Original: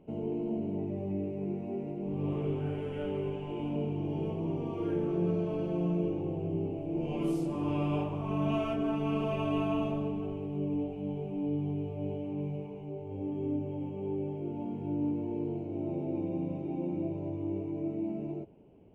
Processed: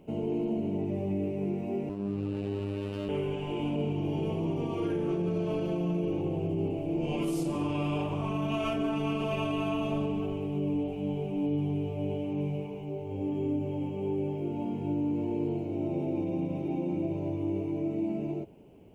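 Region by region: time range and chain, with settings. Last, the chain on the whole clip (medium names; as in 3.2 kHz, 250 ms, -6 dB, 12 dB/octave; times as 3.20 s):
1.89–3.09 s: robot voice 99.9 Hz + sliding maximum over 17 samples
whole clip: treble shelf 2.5 kHz +10 dB; peak limiter -26 dBFS; trim +3.5 dB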